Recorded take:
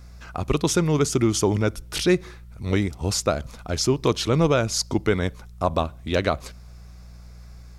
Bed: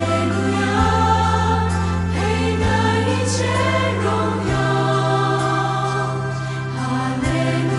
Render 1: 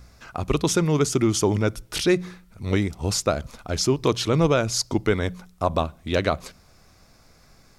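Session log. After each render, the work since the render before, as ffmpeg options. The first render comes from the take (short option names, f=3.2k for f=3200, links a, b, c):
-af "bandreject=f=60:t=h:w=4,bandreject=f=120:t=h:w=4,bandreject=f=180:t=h:w=4"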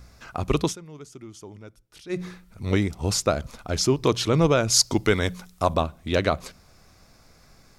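-filter_complex "[0:a]asettb=1/sr,asplit=3[a][b][c];[a]atrim=end=4.704[d];[b]atrim=start=4.7:end=5.74,asetpts=PTS-STARTPTS,afade=t=in:d=0.004:c=qsin,afade=t=out:st=1.036:d=0.004:c=qsin,highshelf=f=2.1k:g=7.5[e];[c]atrim=start=5.736[f];[d][e]acrossfade=d=0.004:c1=hsin:c2=qsin[g];[g][f]acrossfade=d=0.004:c1=qsin:c2=hsin,asplit=3[h][i][j];[h]atrim=end=0.76,asetpts=PTS-STARTPTS,afade=t=out:st=0.63:d=0.13:silence=0.0841395[k];[i]atrim=start=0.76:end=2.09,asetpts=PTS-STARTPTS,volume=-21.5dB[l];[j]atrim=start=2.09,asetpts=PTS-STARTPTS,afade=t=in:d=0.13:silence=0.0841395[m];[k][l][m]concat=n=3:v=0:a=1"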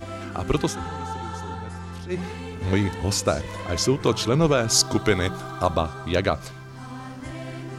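-filter_complex "[1:a]volume=-16dB[a];[0:a][a]amix=inputs=2:normalize=0"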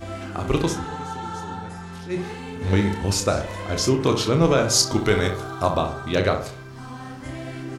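-filter_complex "[0:a]asplit=2[a][b];[b]adelay=30,volume=-7.5dB[c];[a][c]amix=inputs=2:normalize=0,asplit=2[d][e];[e]adelay=64,lowpass=f=1.8k:p=1,volume=-7dB,asplit=2[f][g];[g]adelay=64,lowpass=f=1.8k:p=1,volume=0.48,asplit=2[h][i];[i]adelay=64,lowpass=f=1.8k:p=1,volume=0.48,asplit=2[j][k];[k]adelay=64,lowpass=f=1.8k:p=1,volume=0.48,asplit=2[l][m];[m]adelay=64,lowpass=f=1.8k:p=1,volume=0.48,asplit=2[n][o];[o]adelay=64,lowpass=f=1.8k:p=1,volume=0.48[p];[d][f][h][j][l][n][p]amix=inputs=7:normalize=0"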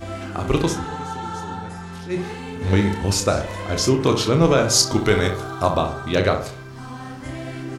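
-af "volume=2dB"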